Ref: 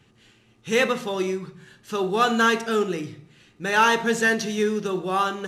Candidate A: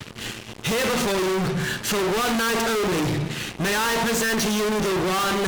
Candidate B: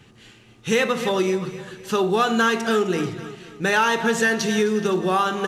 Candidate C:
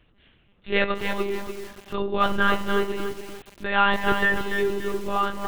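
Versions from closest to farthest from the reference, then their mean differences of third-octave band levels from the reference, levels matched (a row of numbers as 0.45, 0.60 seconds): B, C, A; 4.5, 8.5, 12.0 decibels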